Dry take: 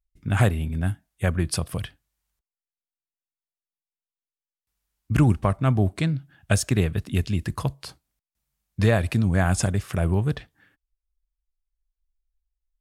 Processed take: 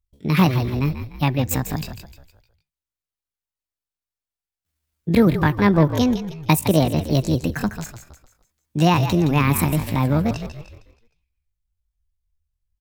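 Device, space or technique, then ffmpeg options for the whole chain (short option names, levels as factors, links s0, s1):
chipmunk voice: -filter_complex "[0:a]asettb=1/sr,asplit=3[s0][s1][s2];[s0]atrim=end=5.634[s3];[s1]atrim=start=5.63:end=7.59,asetpts=PTS-STARTPTS,afade=t=in:d=0.004:c=qsin,afade=t=out:st=1.956:d=0.004:c=qsin,equalizer=f=420:t=o:w=2:g=4[s4];[s2]atrim=start=7.586[s5];[s3][s4]acrossfade=d=0.004:c1=hsin:c2=qsin[s6];[s6][s5]acrossfade=d=0.004:c1=qsin:c2=hsin,asplit=6[s7][s8][s9][s10][s11][s12];[s8]adelay=153,afreqshift=-30,volume=0.335[s13];[s9]adelay=306,afreqshift=-60,volume=0.145[s14];[s10]adelay=459,afreqshift=-90,volume=0.0617[s15];[s11]adelay=612,afreqshift=-120,volume=0.0266[s16];[s12]adelay=765,afreqshift=-150,volume=0.0115[s17];[s7][s13][s14][s15][s16][s17]amix=inputs=6:normalize=0,asetrate=68011,aresample=44100,atempo=0.64842,volume=1.41"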